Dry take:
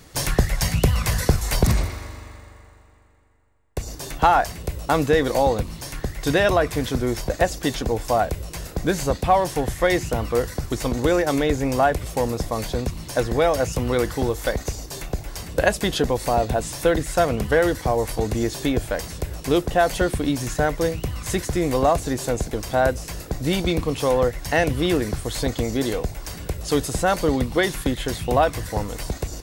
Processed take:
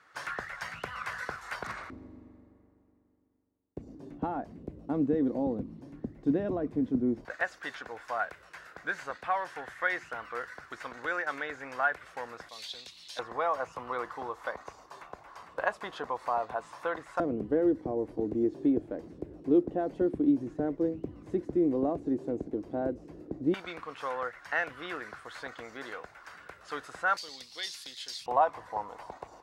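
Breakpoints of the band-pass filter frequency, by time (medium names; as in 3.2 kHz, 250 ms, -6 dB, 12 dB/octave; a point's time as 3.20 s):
band-pass filter, Q 3.3
1.4 kHz
from 1.90 s 260 Hz
from 7.25 s 1.5 kHz
from 12.49 s 3.7 kHz
from 13.19 s 1.1 kHz
from 17.20 s 310 Hz
from 23.54 s 1.4 kHz
from 27.17 s 4.7 kHz
from 28.26 s 930 Hz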